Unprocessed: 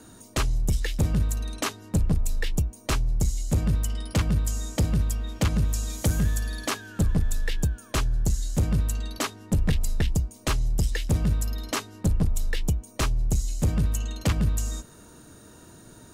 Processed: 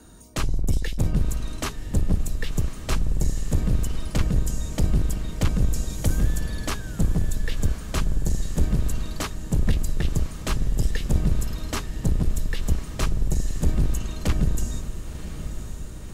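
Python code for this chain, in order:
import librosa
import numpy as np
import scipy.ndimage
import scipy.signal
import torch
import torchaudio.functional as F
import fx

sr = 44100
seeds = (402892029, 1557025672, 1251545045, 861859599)

y = fx.octave_divider(x, sr, octaves=2, level_db=3.0)
y = fx.echo_diffused(y, sr, ms=1055, feedback_pct=62, wet_db=-11.0)
y = y * 10.0 ** (-2.0 / 20.0)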